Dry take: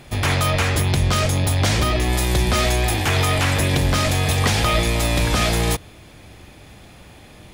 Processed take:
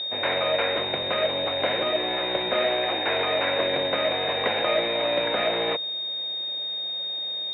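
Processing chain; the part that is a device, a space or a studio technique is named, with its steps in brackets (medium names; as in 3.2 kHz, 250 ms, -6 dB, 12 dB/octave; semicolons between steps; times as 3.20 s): toy sound module (decimation joined by straight lines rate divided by 4×; class-D stage that switches slowly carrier 3.7 kHz; cabinet simulation 540–3600 Hz, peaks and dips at 550 Hz +7 dB, 820 Hz -4 dB, 1.2 kHz -10 dB, 2.3 kHz +6 dB, 3.4 kHz +4 dB); trim +1.5 dB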